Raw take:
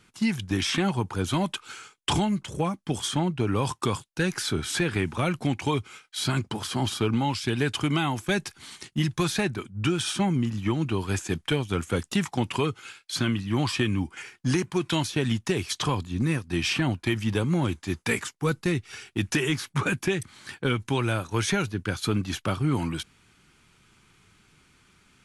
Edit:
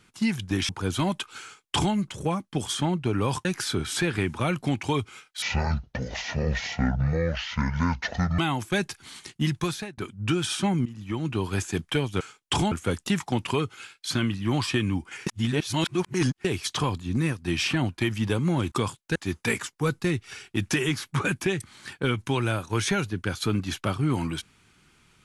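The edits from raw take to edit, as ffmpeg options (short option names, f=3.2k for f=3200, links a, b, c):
-filter_complex "[0:a]asplit=13[a][b][c][d][e][f][g][h][i][j][k][l][m];[a]atrim=end=0.692[n];[b]atrim=start=1.028:end=3.792[o];[c]atrim=start=4.228:end=6.204[p];[d]atrim=start=6.2:end=7.95,asetpts=PTS-STARTPTS,asetrate=26019,aresample=44100,atrim=end_sample=130805,asetpts=PTS-STARTPTS[q];[e]atrim=start=7.946:end=9.54,asetpts=PTS-STARTPTS,afade=t=out:st=1.184:d=0.41[r];[f]atrim=start=9.54:end=10.42,asetpts=PTS-STARTPTS,afade=t=in:d=0.004:c=hsin,afade=t=out:st=0.876:d=0.004:c=hsin:silence=0.158489[s];[g]atrim=start=10.42:end=11.772,asetpts=PTS-STARTPTS,afade=t=in:d=0.54:silence=0.158489[t];[h]atrim=start=1.768:end=2.282[u];[i]atrim=start=11.768:end=14.322[v];[j]atrim=start=14.318:end=15.502,asetpts=PTS-STARTPTS,areverse[w];[k]atrim=start=15.498:end=17.772[x];[l]atrim=start=3.788:end=4.232[y];[m]atrim=start=17.768[z];[n][o]acrossfade=d=0.004:c1=hsin:c2=hsin[aa];[aa][p]acrossfade=d=0.004:c1=hsin:c2=hsin[ab];[ab][q]acrossfade=d=0.004:c1=hsin:c2=hsin[ac];[r][s][t]concat=n=3:v=0:a=1[ad];[ac][ad]acrossfade=d=0.004:c1=hsin:c2=hsin[ae];[ae][u]acrossfade=d=0.004:c1=hsin:c2=hsin[af];[af][v]acrossfade=d=0.004:c1=hsin:c2=hsin[ag];[ag][w]acrossfade=d=0.004:c1=hsin:c2=hsin[ah];[ah][x]acrossfade=d=0.004:c1=hsin:c2=hsin[ai];[ai][y]acrossfade=d=0.004:c1=hsin:c2=hsin[aj];[aj][z]acrossfade=d=0.004:c1=hsin:c2=hsin"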